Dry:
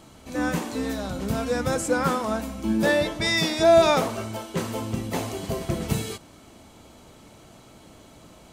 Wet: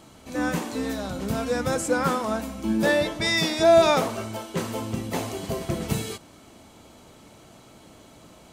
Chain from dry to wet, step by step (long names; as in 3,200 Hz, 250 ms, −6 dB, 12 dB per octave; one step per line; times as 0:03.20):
low-shelf EQ 71 Hz −5.5 dB